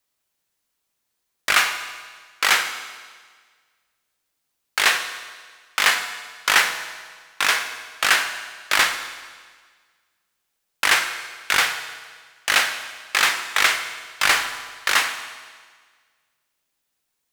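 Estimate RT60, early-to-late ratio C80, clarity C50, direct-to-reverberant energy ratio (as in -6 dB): 1.6 s, 10.5 dB, 9.0 dB, 7.5 dB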